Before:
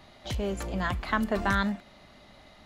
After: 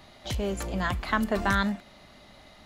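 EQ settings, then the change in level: high shelf 5400 Hz +4.5 dB; +1.0 dB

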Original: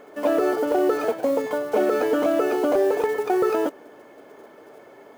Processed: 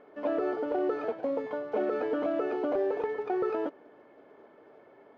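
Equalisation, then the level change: air absorption 280 m; -8.0 dB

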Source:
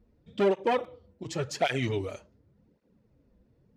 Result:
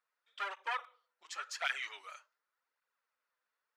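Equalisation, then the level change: ladder high-pass 1100 Hz, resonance 50%; +3.5 dB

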